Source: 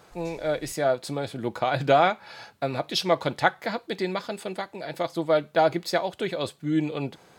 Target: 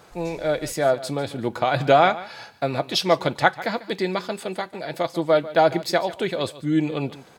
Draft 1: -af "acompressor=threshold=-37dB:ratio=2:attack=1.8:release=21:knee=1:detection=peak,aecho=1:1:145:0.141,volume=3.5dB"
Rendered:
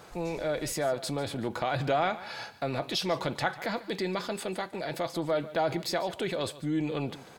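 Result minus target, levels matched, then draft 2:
downward compressor: peak gain reduction +12.5 dB
-af "aecho=1:1:145:0.141,volume=3.5dB"

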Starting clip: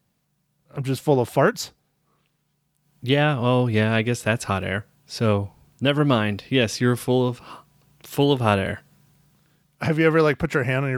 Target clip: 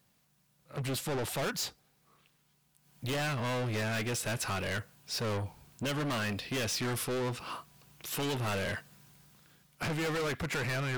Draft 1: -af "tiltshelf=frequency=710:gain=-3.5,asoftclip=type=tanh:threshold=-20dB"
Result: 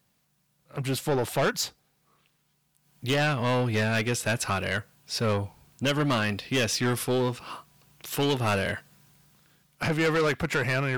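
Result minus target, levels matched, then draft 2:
soft clipping: distortion −5 dB
-af "tiltshelf=frequency=710:gain=-3.5,asoftclip=type=tanh:threshold=-31dB"

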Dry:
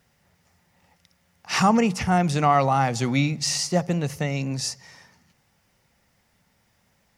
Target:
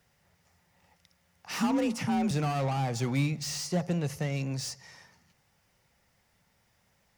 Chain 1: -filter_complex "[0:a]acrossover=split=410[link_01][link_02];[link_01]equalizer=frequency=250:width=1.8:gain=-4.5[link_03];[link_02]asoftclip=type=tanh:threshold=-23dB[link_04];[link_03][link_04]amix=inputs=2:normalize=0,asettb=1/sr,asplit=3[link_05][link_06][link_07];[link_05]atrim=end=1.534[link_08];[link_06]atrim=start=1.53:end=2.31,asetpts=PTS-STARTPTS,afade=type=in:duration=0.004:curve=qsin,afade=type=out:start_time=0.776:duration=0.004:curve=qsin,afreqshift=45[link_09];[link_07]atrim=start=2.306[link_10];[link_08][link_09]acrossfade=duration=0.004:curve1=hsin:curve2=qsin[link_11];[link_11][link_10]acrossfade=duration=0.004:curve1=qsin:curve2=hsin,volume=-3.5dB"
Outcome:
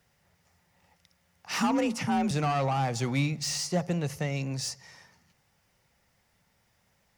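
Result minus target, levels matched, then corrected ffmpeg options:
soft clipping: distortion −4 dB
-filter_complex "[0:a]acrossover=split=410[link_01][link_02];[link_01]equalizer=frequency=250:width=1.8:gain=-4.5[link_03];[link_02]asoftclip=type=tanh:threshold=-29.5dB[link_04];[link_03][link_04]amix=inputs=2:normalize=0,asettb=1/sr,asplit=3[link_05][link_06][link_07];[link_05]atrim=end=1.534[link_08];[link_06]atrim=start=1.53:end=2.31,asetpts=PTS-STARTPTS,afade=type=in:duration=0.004:curve=qsin,afade=type=out:start_time=0.776:duration=0.004:curve=qsin,afreqshift=45[link_09];[link_07]atrim=start=2.306[link_10];[link_08][link_09]acrossfade=duration=0.004:curve1=hsin:curve2=qsin[link_11];[link_11][link_10]acrossfade=duration=0.004:curve1=qsin:curve2=hsin,volume=-3.5dB"

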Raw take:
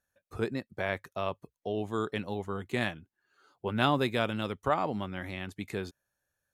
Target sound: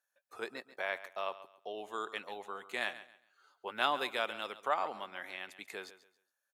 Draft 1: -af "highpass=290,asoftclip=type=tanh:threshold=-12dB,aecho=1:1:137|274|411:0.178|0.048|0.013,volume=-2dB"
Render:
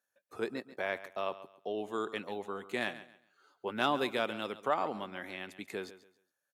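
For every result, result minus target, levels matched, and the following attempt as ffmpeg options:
soft clipping: distortion +18 dB; 250 Hz band +9.0 dB
-af "highpass=290,asoftclip=type=tanh:threshold=-3dB,aecho=1:1:137|274|411:0.178|0.048|0.013,volume=-2dB"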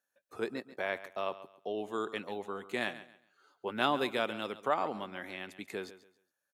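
250 Hz band +9.0 dB
-af "highpass=650,asoftclip=type=tanh:threshold=-3dB,aecho=1:1:137|274|411:0.178|0.048|0.013,volume=-2dB"

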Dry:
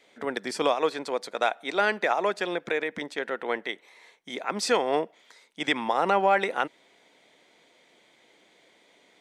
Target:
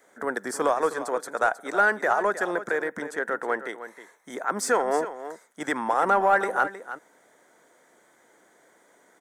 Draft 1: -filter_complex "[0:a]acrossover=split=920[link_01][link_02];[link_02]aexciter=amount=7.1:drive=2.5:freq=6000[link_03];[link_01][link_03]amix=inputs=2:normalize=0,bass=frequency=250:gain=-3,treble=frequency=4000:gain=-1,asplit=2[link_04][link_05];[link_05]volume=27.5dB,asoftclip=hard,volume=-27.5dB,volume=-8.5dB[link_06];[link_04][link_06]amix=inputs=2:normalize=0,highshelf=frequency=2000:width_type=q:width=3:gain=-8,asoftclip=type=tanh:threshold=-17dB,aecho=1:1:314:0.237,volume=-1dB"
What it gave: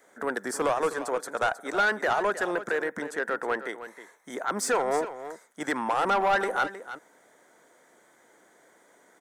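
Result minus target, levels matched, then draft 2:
soft clipping: distortion +17 dB
-filter_complex "[0:a]acrossover=split=920[link_01][link_02];[link_02]aexciter=amount=7.1:drive=2.5:freq=6000[link_03];[link_01][link_03]amix=inputs=2:normalize=0,bass=frequency=250:gain=-3,treble=frequency=4000:gain=-1,asplit=2[link_04][link_05];[link_05]volume=27.5dB,asoftclip=hard,volume=-27.5dB,volume=-8.5dB[link_06];[link_04][link_06]amix=inputs=2:normalize=0,highshelf=frequency=2000:width_type=q:width=3:gain=-8,asoftclip=type=tanh:threshold=-5.5dB,aecho=1:1:314:0.237,volume=-1dB"

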